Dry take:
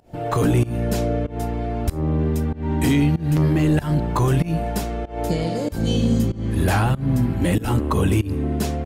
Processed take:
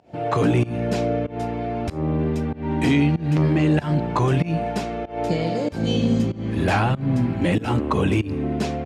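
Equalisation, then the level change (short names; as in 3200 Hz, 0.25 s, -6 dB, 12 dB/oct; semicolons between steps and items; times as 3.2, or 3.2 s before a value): BPF 110–5500 Hz; bell 680 Hz +2 dB; bell 2400 Hz +4 dB 0.4 oct; 0.0 dB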